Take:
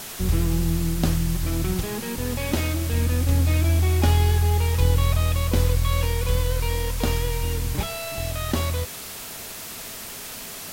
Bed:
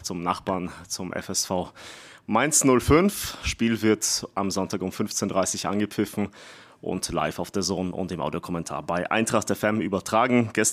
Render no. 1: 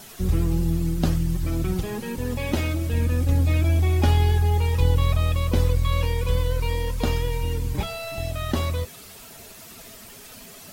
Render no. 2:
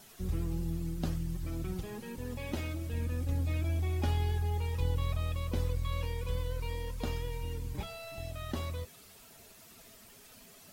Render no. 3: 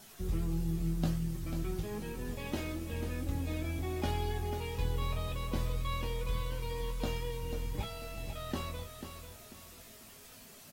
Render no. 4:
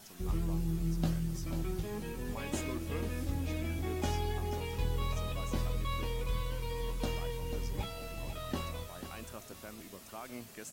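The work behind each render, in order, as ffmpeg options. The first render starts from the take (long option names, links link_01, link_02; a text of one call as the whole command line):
ffmpeg -i in.wav -af "afftdn=noise_reduction=10:noise_floor=-36" out.wav
ffmpeg -i in.wav -af "volume=-12dB" out.wav
ffmpeg -i in.wav -filter_complex "[0:a]asplit=2[link_01][link_02];[link_02]adelay=19,volume=-5.5dB[link_03];[link_01][link_03]amix=inputs=2:normalize=0,asplit=2[link_04][link_05];[link_05]aecho=0:1:492|984|1476|1968:0.355|0.124|0.0435|0.0152[link_06];[link_04][link_06]amix=inputs=2:normalize=0" out.wav
ffmpeg -i in.wav -i bed.wav -filter_complex "[1:a]volume=-25.5dB[link_01];[0:a][link_01]amix=inputs=2:normalize=0" out.wav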